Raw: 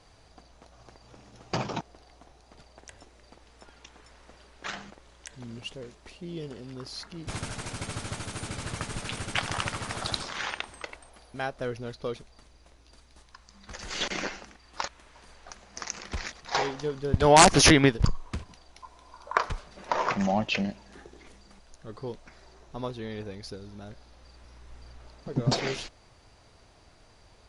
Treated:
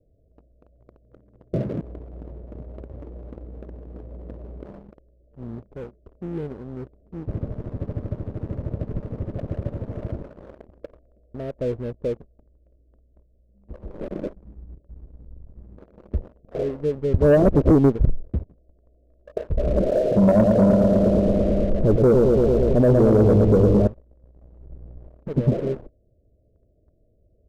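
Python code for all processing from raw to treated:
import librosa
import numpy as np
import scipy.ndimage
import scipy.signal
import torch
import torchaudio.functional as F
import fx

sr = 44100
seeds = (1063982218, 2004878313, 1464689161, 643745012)

y = fx.chain(x, sr, fx.highpass(hz=42.0, slope=24),
    fx.peak_eq(hz=1100.0, db=-8.0, octaves=2.0),
    fx.env_flatten(amount_pct=50), at=(1.64, 4.73))
y = fx.chain(y, sr, fx.zero_step(step_db=-29.0),
    fx.tone_stack(knobs='6-0-2'),
    fx.leveller(passes=1), at=(14.33, 15.78))
y = fx.chain(y, sr, fx.peak_eq(hz=1200.0, db=13.0, octaves=1.3),
    fx.echo_wet_lowpass(ms=112, feedback_pct=73, hz=3500.0, wet_db=-6),
    fx.env_flatten(amount_pct=70), at=(19.57, 23.87))
y = scipy.signal.sosfilt(scipy.signal.butter(16, 640.0, 'lowpass', fs=sr, output='sos'), y)
y = fx.peak_eq(y, sr, hz=64.0, db=5.0, octaves=0.67)
y = fx.leveller(y, sr, passes=2)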